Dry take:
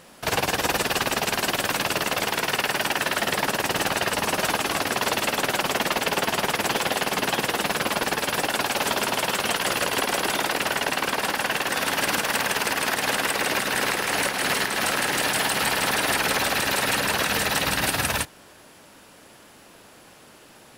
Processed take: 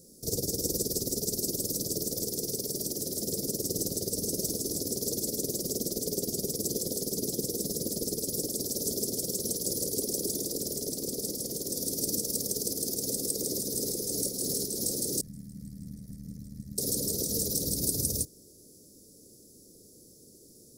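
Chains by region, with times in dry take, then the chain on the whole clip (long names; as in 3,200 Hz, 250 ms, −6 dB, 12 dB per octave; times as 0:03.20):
0:15.21–0:16.78: drawn EQ curve 130 Hz 0 dB, 200 Hz +4 dB, 330 Hz −30 dB, 510 Hz −26 dB, 1,000 Hz −18 dB, 1,700 Hz −1 dB, 3,700 Hz −26 dB + amplitude modulation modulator 77 Hz, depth 50%
whole clip: elliptic band-stop filter 450–5,300 Hz, stop band 40 dB; high-shelf EQ 6,800 Hz +4.5 dB; level −2.5 dB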